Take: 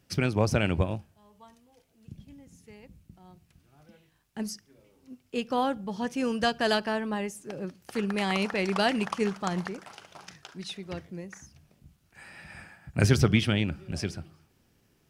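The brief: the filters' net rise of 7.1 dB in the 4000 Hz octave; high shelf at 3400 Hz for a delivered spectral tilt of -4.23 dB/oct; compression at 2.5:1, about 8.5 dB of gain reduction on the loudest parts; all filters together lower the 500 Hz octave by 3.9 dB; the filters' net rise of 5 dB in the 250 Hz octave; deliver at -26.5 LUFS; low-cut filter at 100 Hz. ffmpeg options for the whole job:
-af "highpass=100,equalizer=f=250:t=o:g=8,equalizer=f=500:t=o:g=-8,highshelf=f=3.4k:g=8,equalizer=f=4k:t=o:g=4,acompressor=threshold=-27dB:ratio=2.5,volume=4.5dB"

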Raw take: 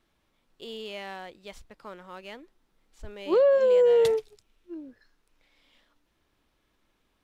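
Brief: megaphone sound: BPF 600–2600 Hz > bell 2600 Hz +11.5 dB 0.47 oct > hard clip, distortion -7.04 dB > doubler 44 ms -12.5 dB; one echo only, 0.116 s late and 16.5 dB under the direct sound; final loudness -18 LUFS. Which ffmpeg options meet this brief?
-filter_complex "[0:a]highpass=600,lowpass=2.6k,equalizer=f=2.6k:t=o:w=0.47:g=11.5,aecho=1:1:116:0.15,asoftclip=type=hard:threshold=-31dB,asplit=2[a][b];[b]adelay=44,volume=-12.5dB[c];[a][c]amix=inputs=2:normalize=0,volume=18.5dB"

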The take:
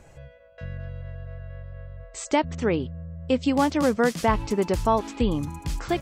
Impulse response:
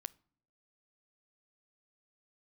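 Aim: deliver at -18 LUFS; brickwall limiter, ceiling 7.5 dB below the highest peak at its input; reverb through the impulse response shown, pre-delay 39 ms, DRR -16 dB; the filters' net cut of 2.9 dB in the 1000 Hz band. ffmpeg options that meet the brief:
-filter_complex "[0:a]equalizer=f=1k:t=o:g=-3.5,alimiter=limit=-16.5dB:level=0:latency=1,asplit=2[a][b];[1:a]atrim=start_sample=2205,adelay=39[c];[b][c]afir=irnorm=-1:irlink=0,volume=20dB[d];[a][d]amix=inputs=2:normalize=0,volume=-4.5dB"

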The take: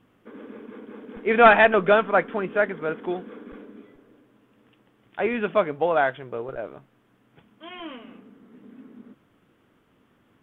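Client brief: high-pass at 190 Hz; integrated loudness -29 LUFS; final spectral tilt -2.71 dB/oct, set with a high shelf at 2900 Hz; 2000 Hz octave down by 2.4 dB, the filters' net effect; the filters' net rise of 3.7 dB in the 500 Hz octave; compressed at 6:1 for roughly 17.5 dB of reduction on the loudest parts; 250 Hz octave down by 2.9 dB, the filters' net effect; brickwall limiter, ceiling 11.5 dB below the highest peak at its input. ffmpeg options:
-af "highpass=190,equalizer=f=250:t=o:g=-4.5,equalizer=f=500:t=o:g=6,equalizer=f=2k:t=o:g=-6.5,highshelf=f=2.9k:g=8,acompressor=threshold=-28dB:ratio=6,volume=9.5dB,alimiter=limit=-18dB:level=0:latency=1"

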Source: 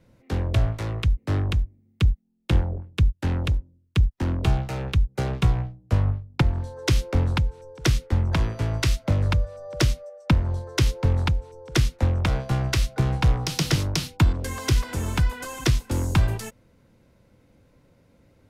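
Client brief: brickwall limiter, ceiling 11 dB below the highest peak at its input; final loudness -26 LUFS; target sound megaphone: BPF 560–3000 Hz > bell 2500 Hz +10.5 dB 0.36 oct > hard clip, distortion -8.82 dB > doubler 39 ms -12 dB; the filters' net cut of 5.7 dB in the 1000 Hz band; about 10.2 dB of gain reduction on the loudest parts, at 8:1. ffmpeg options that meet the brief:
-filter_complex "[0:a]equalizer=f=1k:t=o:g=-7,acompressor=threshold=-25dB:ratio=8,alimiter=limit=-21.5dB:level=0:latency=1,highpass=560,lowpass=3k,equalizer=f=2.5k:t=o:w=0.36:g=10.5,asoftclip=type=hard:threshold=-32dB,asplit=2[a][b];[b]adelay=39,volume=-12dB[c];[a][c]amix=inputs=2:normalize=0,volume=17dB"

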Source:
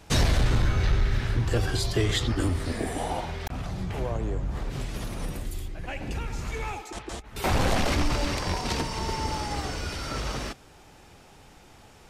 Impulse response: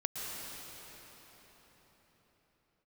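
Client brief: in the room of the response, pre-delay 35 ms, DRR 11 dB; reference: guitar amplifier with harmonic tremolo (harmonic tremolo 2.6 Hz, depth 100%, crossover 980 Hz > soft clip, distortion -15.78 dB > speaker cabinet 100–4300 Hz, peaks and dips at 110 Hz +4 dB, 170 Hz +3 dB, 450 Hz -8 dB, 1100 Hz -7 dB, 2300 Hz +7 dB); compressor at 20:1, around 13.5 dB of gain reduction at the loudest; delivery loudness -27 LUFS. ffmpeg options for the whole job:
-filter_complex "[0:a]acompressor=threshold=-31dB:ratio=20,asplit=2[a][b];[1:a]atrim=start_sample=2205,adelay=35[c];[b][c]afir=irnorm=-1:irlink=0,volume=-14.5dB[d];[a][d]amix=inputs=2:normalize=0,acrossover=split=980[e][f];[e]aeval=exprs='val(0)*(1-1/2+1/2*cos(2*PI*2.6*n/s))':c=same[g];[f]aeval=exprs='val(0)*(1-1/2-1/2*cos(2*PI*2.6*n/s))':c=same[h];[g][h]amix=inputs=2:normalize=0,asoftclip=threshold=-32dB,highpass=100,equalizer=f=110:t=q:w=4:g=4,equalizer=f=170:t=q:w=4:g=3,equalizer=f=450:t=q:w=4:g=-8,equalizer=f=1.1k:t=q:w=4:g=-7,equalizer=f=2.3k:t=q:w=4:g=7,lowpass=f=4.3k:w=0.5412,lowpass=f=4.3k:w=1.3066,volume=16.5dB"

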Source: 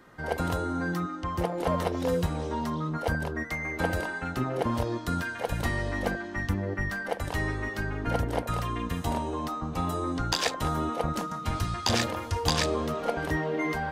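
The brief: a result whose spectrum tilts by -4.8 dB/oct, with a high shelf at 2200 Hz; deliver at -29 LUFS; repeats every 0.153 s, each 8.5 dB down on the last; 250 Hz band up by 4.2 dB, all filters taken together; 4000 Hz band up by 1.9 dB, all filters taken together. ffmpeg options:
-af "equalizer=f=250:t=o:g=5.5,highshelf=f=2.2k:g=-6,equalizer=f=4k:t=o:g=8,aecho=1:1:153|306|459|612:0.376|0.143|0.0543|0.0206,volume=-1dB"

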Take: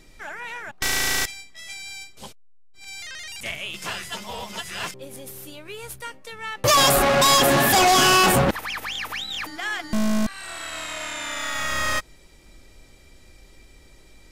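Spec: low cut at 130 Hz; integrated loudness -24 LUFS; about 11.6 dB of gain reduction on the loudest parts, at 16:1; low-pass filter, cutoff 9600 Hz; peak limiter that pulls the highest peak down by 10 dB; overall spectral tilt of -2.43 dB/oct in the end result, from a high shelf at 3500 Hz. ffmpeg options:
-af "highpass=130,lowpass=9.6k,highshelf=f=3.5k:g=8,acompressor=threshold=-22dB:ratio=16,volume=6dB,alimiter=limit=-15dB:level=0:latency=1"

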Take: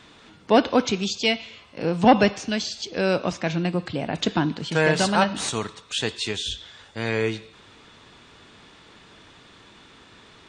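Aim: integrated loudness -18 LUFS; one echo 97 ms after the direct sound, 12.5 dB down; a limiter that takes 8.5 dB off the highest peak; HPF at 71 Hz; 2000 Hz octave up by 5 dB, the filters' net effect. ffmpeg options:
-af "highpass=71,equalizer=f=2k:t=o:g=6.5,alimiter=limit=-10.5dB:level=0:latency=1,aecho=1:1:97:0.237,volume=6.5dB"

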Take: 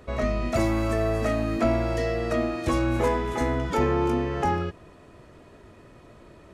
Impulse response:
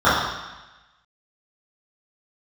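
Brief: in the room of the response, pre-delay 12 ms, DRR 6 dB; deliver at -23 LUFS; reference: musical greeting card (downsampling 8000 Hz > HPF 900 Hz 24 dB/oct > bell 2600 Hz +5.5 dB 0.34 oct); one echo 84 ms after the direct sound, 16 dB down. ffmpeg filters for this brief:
-filter_complex "[0:a]aecho=1:1:84:0.158,asplit=2[a][b];[1:a]atrim=start_sample=2205,adelay=12[c];[b][c]afir=irnorm=-1:irlink=0,volume=-32.5dB[d];[a][d]amix=inputs=2:normalize=0,aresample=8000,aresample=44100,highpass=f=900:w=0.5412,highpass=f=900:w=1.3066,equalizer=f=2.6k:t=o:w=0.34:g=5.5,volume=8dB"

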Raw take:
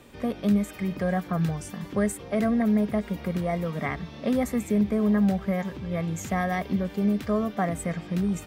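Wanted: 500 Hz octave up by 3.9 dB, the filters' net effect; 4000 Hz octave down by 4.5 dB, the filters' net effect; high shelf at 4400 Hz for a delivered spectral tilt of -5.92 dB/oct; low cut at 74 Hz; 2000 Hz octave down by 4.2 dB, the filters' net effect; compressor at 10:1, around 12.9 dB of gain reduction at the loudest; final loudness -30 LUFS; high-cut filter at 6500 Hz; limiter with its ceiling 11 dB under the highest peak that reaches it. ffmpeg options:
-af "highpass=74,lowpass=6.5k,equalizer=f=500:t=o:g=5,equalizer=f=2k:t=o:g=-5,equalizer=f=4k:t=o:g=-7.5,highshelf=f=4.4k:g=7.5,acompressor=threshold=-31dB:ratio=10,volume=9.5dB,alimiter=limit=-21.5dB:level=0:latency=1"

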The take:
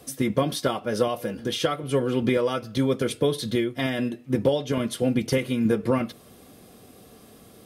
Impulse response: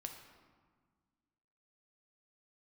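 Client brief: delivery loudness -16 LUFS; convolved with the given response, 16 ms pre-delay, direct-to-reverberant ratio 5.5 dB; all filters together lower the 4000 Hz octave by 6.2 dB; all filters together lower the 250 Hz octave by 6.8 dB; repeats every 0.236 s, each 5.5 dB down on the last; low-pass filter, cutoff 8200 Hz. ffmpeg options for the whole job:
-filter_complex "[0:a]lowpass=8.2k,equalizer=f=250:t=o:g=-8,equalizer=f=4k:t=o:g=-8,aecho=1:1:236|472|708|944|1180|1416|1652:0.531|0.281|0.149|0.079|0.0419|0.0222|0.0118,asplit=2[a][b];[1:a]atrim=start_sample=2205,adelay=16[c];[b][c]afir=irnorm=-1:irlink=0,volume=-2.5dB[d];[a][d]amix=inputs=2:normalize=0,volume=10dB"

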